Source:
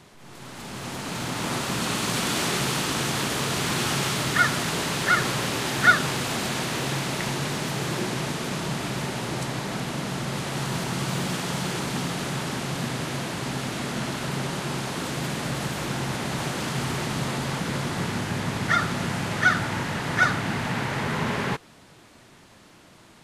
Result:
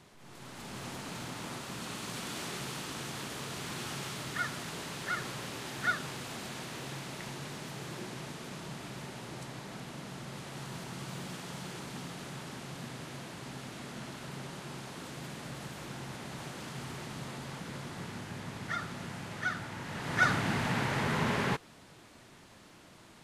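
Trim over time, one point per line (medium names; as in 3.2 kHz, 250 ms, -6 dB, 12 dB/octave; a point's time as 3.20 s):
0.78 s -7 dB
1.59 s -14 dB
19.78 s -14 dB
20.32 s -4 dB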